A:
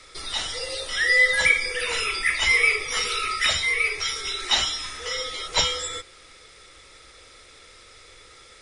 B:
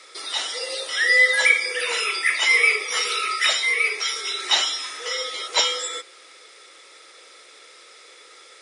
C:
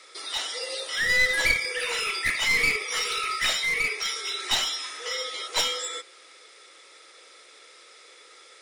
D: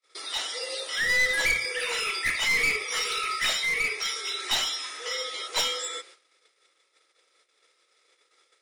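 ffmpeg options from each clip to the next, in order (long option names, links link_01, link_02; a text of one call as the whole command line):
ffmpeg -i in.wav -af "highpass=frequency=330:width=0.5412,highpass=frequency=330:width=1.3066,volume=2dB" out.wav
ffmpeg -i in.wav -af "aeval=exprs='clip(val(0),-1,0.0944)':channel_layout=same,volume=-3.5dB" out.wav
ffmpeg -i in.wav -af "bandreject=frequency=60:width_type=h:width=6,bandreject=frequency=120:width_type=h:width=6,agate=range=-37dB:threshold=-48dB:ratio=16:detection=peak,aeval=exprs='0.398*sin(PI/2*1.41*val(0)/0.398)':channel_layout=same,volume=-7.5dB" out.wav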